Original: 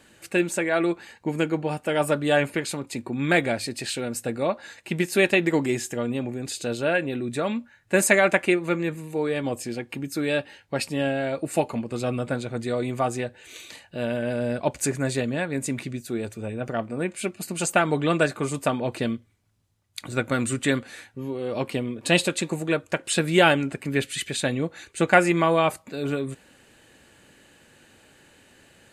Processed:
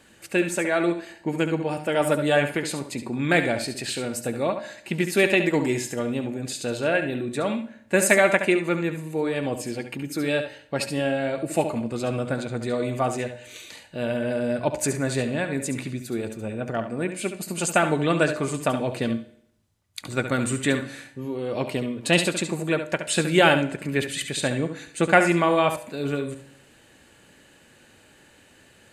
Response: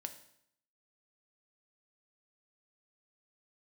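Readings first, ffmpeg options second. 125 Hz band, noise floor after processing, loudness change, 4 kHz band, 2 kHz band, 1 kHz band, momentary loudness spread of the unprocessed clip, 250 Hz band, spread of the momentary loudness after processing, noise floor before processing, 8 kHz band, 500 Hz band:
+0.5 dB, -55 dBFS, +0.5 dB, +0.5 dB, +0.5 dB, +0.5 dB, 12 LU, +0.5 dB, 12 LU, -57 dBFS, +0.5 dB, +0.5 dB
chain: -filter_complex "[0:a]asplit=2[s0][s1];[1:a]atrim=start_sample=2205,adelay=70[s2];[s1][s2]afir=irnorm=-1:irlink=0,volume=0.531[s3];[s0][s3]amix=inputs=2:normalize=0"

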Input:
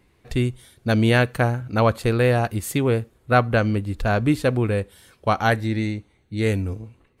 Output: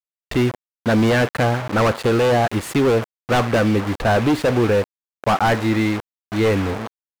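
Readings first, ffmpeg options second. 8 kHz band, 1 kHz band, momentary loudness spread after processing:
+3.0 dB, +3.5 dB, 9 LU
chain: -filter_complex "[0:a]acrusher=bits=5:mix=0:aa=0.000001,asplit=2[s0][s1];[s1]highpass=f=720:p=1,volume=14.1,asoftclip=type=tanh:threshold=0.562[s2];[s0][s2]amix=inputs=2:normalize=0,lowpass=f=1100:p=1,volume=0.501,aeval=exprs='0.266*(abs(mod(val(0)/0.266+3,4)-2)-1)':c=same"

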